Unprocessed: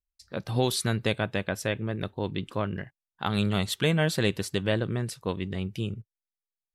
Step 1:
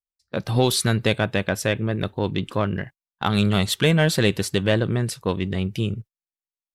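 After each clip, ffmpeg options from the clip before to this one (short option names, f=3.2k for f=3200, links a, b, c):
-filter_complex "[0:a]agate=range=-23dB:threshold=-46dB:ratio=16:detection=peak,asplit=2[a][b];[b]asoftclip=type=tanh:threshold=-25.5dB,volume=-7.5dB[c];[a][c]amix=inputs=2:normalize=0,volume=4.5dB"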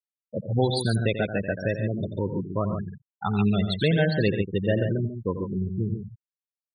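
-af "afftfilt=real='re*gte(hypot(re,im),0.178)':imag='im*gte(hypot(re,im),0.178)':win_size=1024:overlap=0.75,aecho=1:1:88|141:0.299|0.422,volume=-3.5dB"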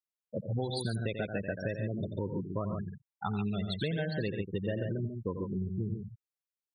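-af "acompressor=threshold=-25dB:ratio=6,volume=-4.5dB"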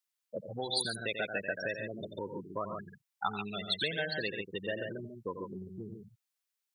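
-af "highpass=f=1.4k:p=1,volume=8dB"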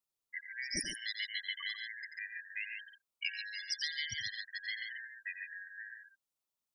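-af "afftfilt=real='real(if(lt(b,272),68*(eq(floor(b/68),0)*3+eq(floor(b/68),1)*0+eq(floor(b/68),2)*1+eq(floor(b/68),3)*2)+mod(b,68),b),0)':imag='imag(if(lt(b,272),68*(eq(floor(b/68),0)*3+eq(floor(b/68),1)*0+eq(floor(b/68),2)*1+eq(floor(b/68),3)*2)+mod(b,68),b),0)':win_size=2048:overlap=0.75,volume=-4.5dB"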